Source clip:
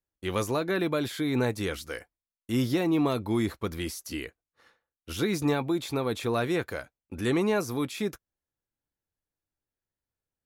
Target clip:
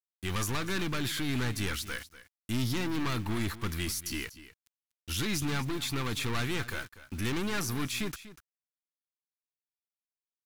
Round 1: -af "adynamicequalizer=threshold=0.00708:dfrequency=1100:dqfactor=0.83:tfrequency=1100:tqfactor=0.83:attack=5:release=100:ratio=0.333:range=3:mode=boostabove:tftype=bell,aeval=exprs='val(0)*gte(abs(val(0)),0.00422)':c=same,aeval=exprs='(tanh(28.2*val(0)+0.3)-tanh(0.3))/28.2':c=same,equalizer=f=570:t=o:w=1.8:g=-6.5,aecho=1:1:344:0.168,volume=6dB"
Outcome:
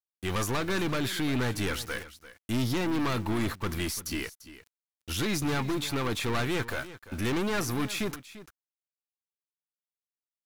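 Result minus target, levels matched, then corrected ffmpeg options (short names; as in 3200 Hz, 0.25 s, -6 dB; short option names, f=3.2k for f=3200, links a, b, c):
echo 0.101 s late; 500 Hz band +4.0 dB
-af "adynamicequalizer=threshold=0.00708:dfrequency=1100:dqfactor=0.83:tfrequency=1100:tqfactor=0.83:attack=5:release=100:ratio=0.333:range=3:mode=boostabove:tftype=bell,aeval=exprs='val(0)*gte(abs(val(0)),0.00422)':c=same,aeval=exprs='(tanh(28.2*val(0)+0.3)-tanh(0.3))/28.2':c=same,equalizer=f=570:t=o:w=1.8:g=-15,aecho=1:1:243:0.168,volume=6dB"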